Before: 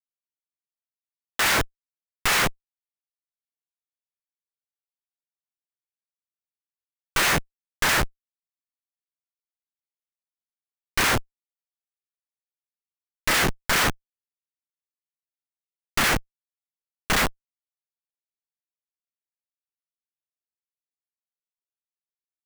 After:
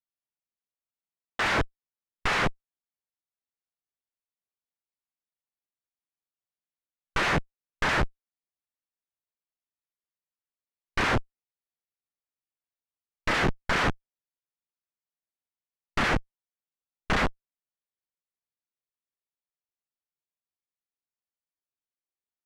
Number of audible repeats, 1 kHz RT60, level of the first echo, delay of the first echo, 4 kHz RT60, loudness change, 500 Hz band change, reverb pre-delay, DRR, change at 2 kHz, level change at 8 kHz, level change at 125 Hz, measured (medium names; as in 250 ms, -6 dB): no echo, no reverb, no echo, no echo, no reverb, -5.0 dB, -1.0 dB, no reverb, no reverb, -4.0 dB, -15.5 dB, -0.5 dB